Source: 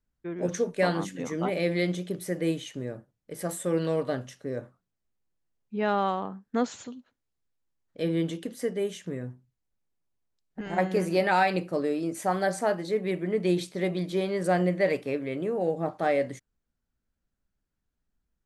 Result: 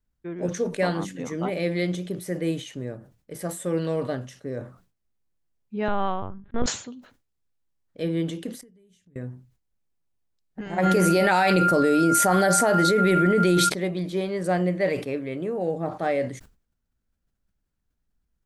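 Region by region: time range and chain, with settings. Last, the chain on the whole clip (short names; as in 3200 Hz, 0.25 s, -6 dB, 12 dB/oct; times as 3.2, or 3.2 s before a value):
5.88–6.66 LPC vocoder at 8 kHz pitch kept + sustainer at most 130 dB/s
8.61–9.16 passive tone stack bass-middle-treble 10-0-1 + compressor 10:1, threshold -55 dBFS
10.82–13.68 high shelf 6600 Hz +10 dB + whine 1400 Hz -34 dBFS + fast leveller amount 100%
whole clip: low shelf 150 Hz +4.5 dB; sustainer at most 130 dB/s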